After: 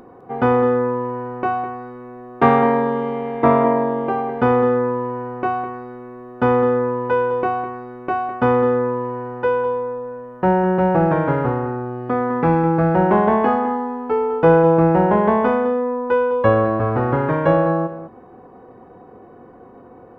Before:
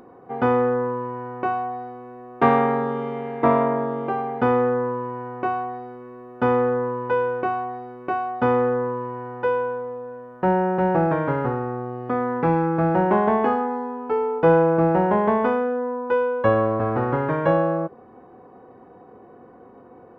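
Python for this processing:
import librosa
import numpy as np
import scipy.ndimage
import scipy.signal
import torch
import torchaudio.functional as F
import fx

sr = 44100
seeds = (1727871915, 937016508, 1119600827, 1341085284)

y = fx.low_shelf(x, sr, hz=73.0, db=8.0)
y = y + 10.0 ** (-12.0 / 20.0) * np.pad(y, (int(206 * sr / 1000.0), 0))[:len(y)]
y = y * 10.0 ** (3.0 / 20.0)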